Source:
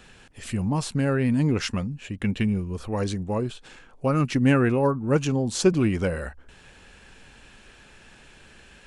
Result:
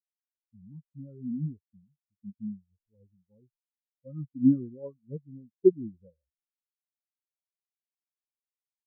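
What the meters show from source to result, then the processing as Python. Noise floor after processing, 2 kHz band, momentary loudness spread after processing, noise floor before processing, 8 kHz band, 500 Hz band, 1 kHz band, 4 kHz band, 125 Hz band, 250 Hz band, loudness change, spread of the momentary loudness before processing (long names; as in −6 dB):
below −85 dBFS, below −40 dB, 22 LU, −52 dBFS, below −40 dB, −6.5 dB, below −40 dB, below −40 dB, −14.5 dB, −7.0 dB, −5.0 dB, 10 LU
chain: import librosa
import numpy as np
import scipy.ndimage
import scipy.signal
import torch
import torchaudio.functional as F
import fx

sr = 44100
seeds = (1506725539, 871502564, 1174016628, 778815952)

y = np.repeat(scipy.signal.resample_poly(x, 1, 8), 8)[:len(x)]
y = fx.spectral_expand(y, sr, expansion=4.0)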